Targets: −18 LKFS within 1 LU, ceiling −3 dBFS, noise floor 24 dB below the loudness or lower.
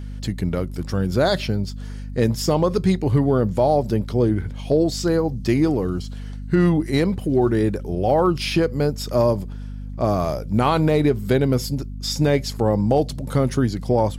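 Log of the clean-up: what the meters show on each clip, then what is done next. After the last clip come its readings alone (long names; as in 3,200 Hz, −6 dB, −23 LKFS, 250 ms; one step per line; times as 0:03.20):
mains hum 50 Hz; hum harmonics up to 250 Hz; level of the hum −29 dBFS; integrated loudness −21.0 LKFS; sample peak −7.0 dBFS; target loudness −18.0 LKFS
→ mains-hum notches 50/100/150/200/250 Hz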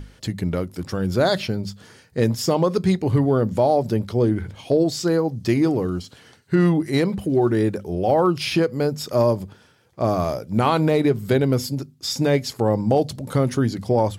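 mains hum none found; integrated loudness −21.5 LKFS; sample peak −7.5 dBFS; target loudness −18.0 LKFS
→ level +3.5 dB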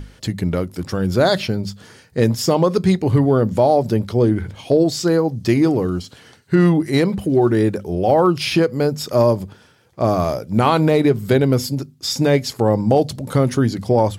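integrated loudness −18.0 LKFS; sample peak −4.0 dBFS; background noise floor −50 dBFS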